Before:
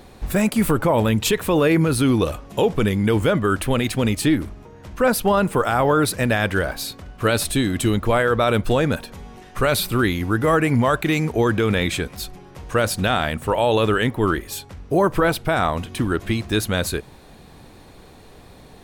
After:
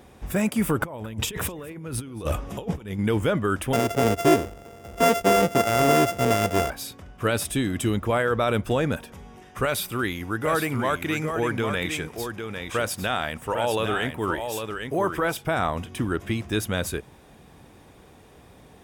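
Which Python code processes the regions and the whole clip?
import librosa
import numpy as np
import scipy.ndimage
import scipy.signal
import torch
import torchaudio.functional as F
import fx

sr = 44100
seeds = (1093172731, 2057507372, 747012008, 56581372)

y = fx.chain(x, sr, fx.low_shelf(hz=62.0, db=8.0),
    fx.over_compress(threshold_db=-24.0, ratio=-0.5),
    fx.echo_single(ms=222, db=-20.5), at=(0.81, 2.99))
y = fx.chain(y, sr, fx.sample_sort(block=64),
    fx.peak_eq(hz=430.0, db=9.0, octaves=1.1), at=(3.73, 6.7))
y = fx.chain(y, sr, fx.low_shelf(hz=420.0, db=-6.0),
    fx.echo_single(ms=802, db=-6.5), at=(9.65, 15.45))
y = scipy.signal.sosfilt(scipy.signal.butter(2, 47.0, 'highpass', fs=sr, output='sos'), y)
y = fx.notch(y, sr, hz=4200.0, q=5.1)
y = y * 10.0 ** (-4.5 / 20.0)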